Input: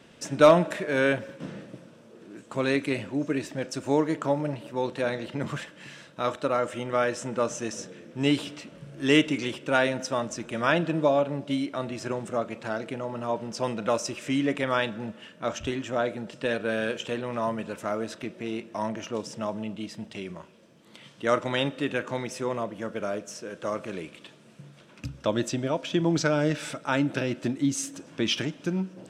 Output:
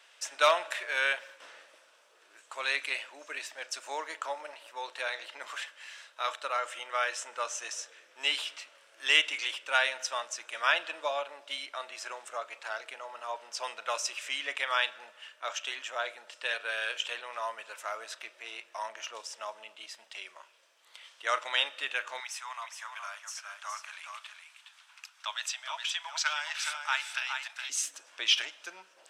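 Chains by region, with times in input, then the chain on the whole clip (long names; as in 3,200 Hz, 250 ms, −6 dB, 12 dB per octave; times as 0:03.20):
0:22.20–0:27.70: Butterworth high-pass 800 Hz + single-tap delay 416 ms −6 dB
whole clip: Bessel high-pass filter 1,100 Hz, order 4; dynamic equaliser 3,000 Hz, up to +4 dB, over −43 dBFS, Q 1.3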